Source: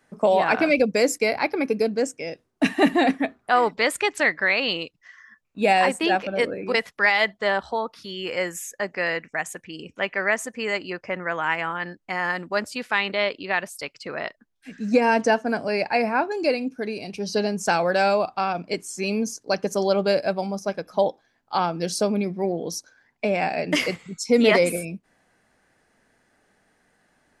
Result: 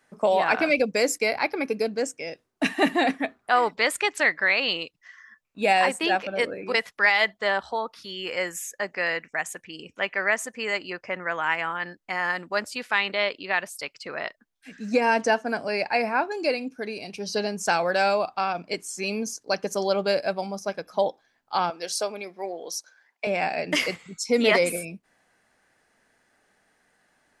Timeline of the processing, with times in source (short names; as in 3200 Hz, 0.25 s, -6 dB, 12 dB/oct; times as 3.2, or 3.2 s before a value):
21.7–23.27 HPF 500 Hz
whole clip: low shelf 450 Hz -7 dB